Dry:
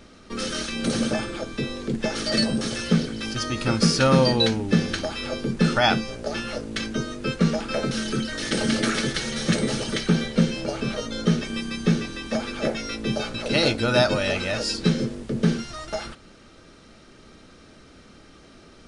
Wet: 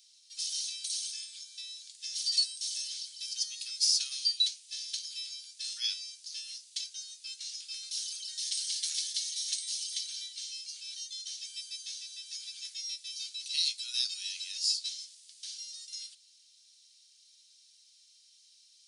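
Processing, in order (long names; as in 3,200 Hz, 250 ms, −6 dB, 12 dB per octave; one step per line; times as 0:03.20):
inverse Chebyshev high-pass filter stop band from 710 Hz, stop band 80 dB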